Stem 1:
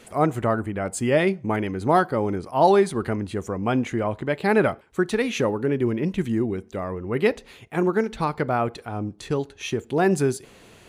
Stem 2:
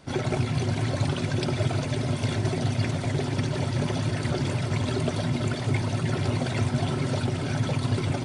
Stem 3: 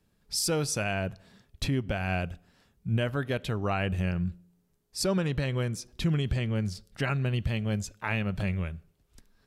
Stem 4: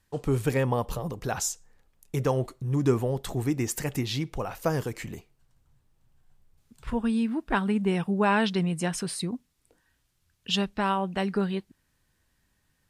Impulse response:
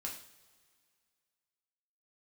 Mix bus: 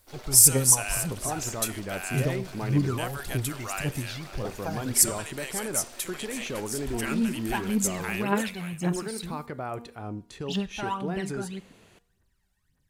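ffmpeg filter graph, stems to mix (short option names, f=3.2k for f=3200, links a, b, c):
-filter_complex "[0:a]alimiter=limit=-17.5dB:level=0:latency=1:release=83,adelay=1100,volume=-7dB,asplit=3[a][b][c];[a]atrim=end=3.08,asetpts=PTS-STARTPTS,afade=t=out:st=3.076:d=0.004:c=hsin[d];[b]atrim=start=3.08:end=4.45,asetpts=PTS-STARTPTS,volume=0[e];[c]atrim=start=4.45,asetpts=PTS-STARTPTS,afade=t=in:d=0.004:c=hsin[f];[d][e][f]concat=n=3:v=0:a=1[g];[1:a]highpass=f=330:w=0.5412,highpass=f=330:w=1.3066,equalizer=f=4.9k:w=1.5:g=7,aeval=exprs='max(val(0),0)':c=same,volume=-10.5dB[h];[2:a]aexciter=amount=7.7:drive=6.6:freq=6.5k,highpass=1k,volume=-0.5dB,asplit=2[i][j];[j]volume=-15dB[k];[3:a]aphaser=in_gain=1:out_gain=1:delay=1.5:decay=0.74:speed=1.8:type=triangular,volume=-9.5dB,asplit=2[l][m];[m]volume=-13dB[n];[4:a]atrim=start_sample=2205[o];[n][o]afir=irnorm=-1:irlink=0[p];[k]aecho=0:1:556:1[q];[g][h][i][l][p][q]amix=inputs=6:normalize=0,bandreject=f=237.4:t=h:w=4,bandreject=f=474.8:t=h:w=4,bandreject=f=712.2:t=h:w=4,bandreject=f=949.6:t=h:w=4,bandreject=f=1.187k:t=h:w=4,bandreject=f=1.4244k:t=h:w=4,bandreject=f=1.6618k:t=h:w=4,bandreject=f=1.8992k:t=h:w=4,bandreject=f=2.1366k:t=h:w=4,bandreject=f=2.374k:t=h:w=4,bandreject=f=2.6114k:t=h:w=4,bandreject=f=2.8488k:t=h:w=4,bandreject=f=3.0862k:t=h:w=4,bandreject=f=3.3236k:t=h:w=4,bandreject=f=3.561k:t=h:w=4,bandreject=f=3.7984k:t=h:w=4,bandreject=f=4.0358k:t=h:w=4,bandreject=f=4.2732k:t=h:w=4,bandreject=f=4.5106k:t=h:w=4,bandreject=f=4.748k:t=h:w=4,bandreject=f=4.9854k:t=h:w=4,bandreject=f=5.2228k:t=h:w=4,bandreject=f=5.4602k:t=h:w=4,bandreject=f=5.6976k:t=h:w=4,bandreject=f=5.935k:t=h:w=4,bandreject=f=6.1724k:t=h:w=4,bandreject=f=6.4098k:t=h:w=4,bandreject=f=6.6472k:t=h:w=4,bandreject=f=6.8846k:t=h:w=4,bandreject=f=7.122k:t=h:w=4,bandreject=f=7.3594k:t=h:w=4,bandreject=f=7.5968k:t=h:w=4,bandreject=f=7.8342k:t=h:w=4,bandreject=f=8.0716k:t=h:w=4,bandreject=f=8.309k:t=h:w=4,bandreject=f=8.5464k:t=h:w=4,bandreject=f=8.7838k:t=h:w=4,bandreject=f=9.0212k:t=h:w=4,bandreject=f=9.2586k:t=h:w=4"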